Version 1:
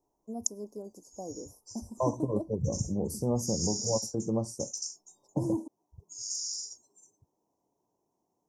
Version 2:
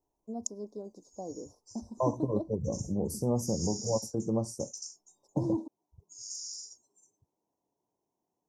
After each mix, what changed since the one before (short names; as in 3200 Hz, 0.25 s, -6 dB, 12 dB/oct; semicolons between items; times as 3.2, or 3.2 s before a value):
first voice: add synth low-pass 3600 Hz, resonance Q 6.4; background -5.5 dB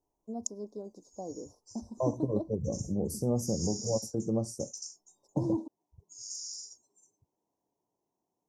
second voice: add bell 970 Hz -9 dB 0.44 oct